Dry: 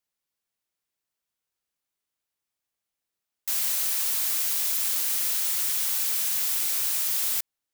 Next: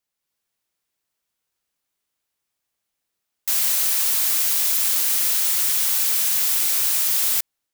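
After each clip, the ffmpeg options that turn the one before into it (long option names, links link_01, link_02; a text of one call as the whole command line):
ffmpeg -i in.wav -af "dynaudnorm=framelen=150:gausssize=3:maxgain=4dB,volume=2dB" out.wav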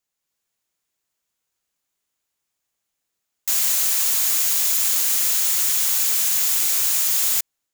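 ffmpeg -i in.wav -af "equalizer=frequency=6900:width=5.8:gain=6.5" out.wav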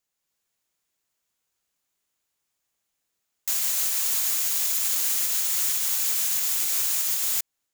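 ffmpeg -i in.wav -af "alimiter=limit=-14dB:level=0:latency=1:release=246" out.wav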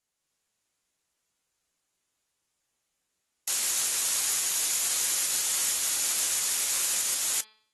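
ffmpeg -i in.wav -af "bandreject=frequency=216.8:width_type=h:width=4,bandreject=frequency=433.6:width_type=h:width=4,bandreject=frequency=650.4:width_type=h:width=4,bandreject=frequency=867.2:width_type=h:width=4,bandreject=frequency=1084:width_type=h:width=4,bandreject=frequency=1300.8:width_type=h:width=4,bandreject=frequency=1517.6:width_type=h:width=4,bandreject=frequency=1734.4:width_type=h:width=4,bandreject=frequency=1951.2:width_type=h:width=4,bandreject=frequency=2168:width_type=h:width=4,bandreject=frequency=2384.8:width_type=h:width=4,bandreject=frequency=2601.6:width_type=h:width=4,bandreject=frequency=2818.4:width_type=h:width=4,bandreject=frequency=3035.2:width_type=h:width=4,bandreject=frequency=3252:width_type=h:width=4,bandreject=frequency=3468.8:width_type=h:width=4,bandreject=frequency=3685.6:width_type=h:width=4,bandreject=frequency=3902.4:width_type=h:width=4,bandreject=frequency=4119.2:width_type=h:width=4,bandreject=frequency=4336:width_type=h:width=4,bandreject=frequency=4552.8:width_type=h:width=4,bandreject=frequency=4769.6:width_type=h:width=4,bandreject=frequency=4986.4:width_type=h:width=4" -ar 32000 -c:a aac -b:a 32k out.aac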